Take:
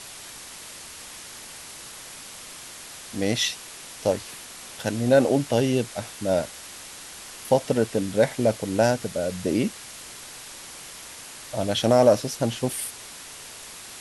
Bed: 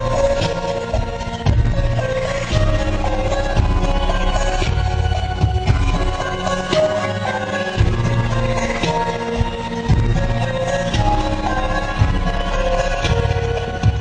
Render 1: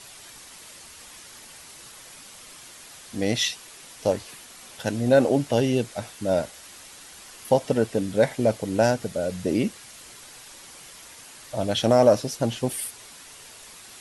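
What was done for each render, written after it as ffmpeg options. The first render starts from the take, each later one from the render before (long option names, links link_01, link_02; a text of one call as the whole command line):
ffmpeg -i in.wav -af "afftdn=noise_reduction=6:noise_floor=-42" out.wav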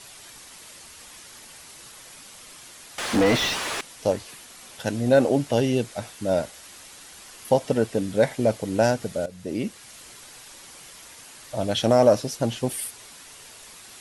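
ffmpeg -i in.wav -filter_complex "[0:a]asettb=1/sr,asplit=3[link_01][link_02][link_03];[link_01]atrim=end=2.984[link_04];[link_02]atrim=start=2.98:end=3.81,asetpts=PTS-STARTPTS,afade=type=in:duration=0.004:curve=qsin,afade=type=out:start_time=0.826:duration=0.004:curve=qsin,asplit=2[link_05][link_06];[link_06]highpass=frequency=720:poles=1,volume=36dB,asoftclip=type=tanh:threshold=-10dB[link_07];[link_05][link_07]amix=inputs=2:normalize=0,lowpass=frequency=1300:poles=1,volume=-6dB[link_08];[link_03]atrim=start=3.806[link_09];[link_04][link_08]acrossfade=duration=0.004:curve1=hsin:curve2=qsin[link_10];[link_10][link_09]acrossfade=duration=0.004:curve1=qsin:curve2=hsin,asplit=2[link_11][link_12];[link_11]atrim=end=9.26,asetpts=PTS-STARTPTS,afade=type=out:start_time=9.256:duration=0.004:curve=hsin:silence=0.199526[link_13];[link_12]atrim=start=9.26,asetpts=PTS-STARTPTS,afade=type=in:duration=0.67:silence=0.199526[link_14];[link_13][link_14]concat=n=2:v=0:a=1" out.wav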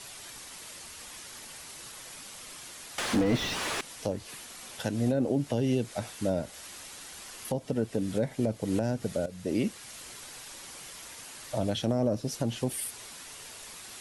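ffmpeg -i in.wav -filter_complex "[0:a]acrossover=split=370[link_01][link_02];[link_02]acompressor=threshold=-29dB:ratio=10[link_03];[link_01][link_03]amix=inputs=2:normalize=0,alimiter=limit=-17dB:level=0:latency=1:release=285" out.wav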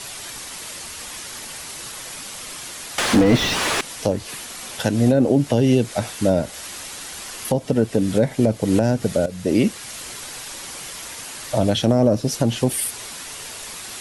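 ffmpeg -i in.wav -af "volume=11dB" out.wav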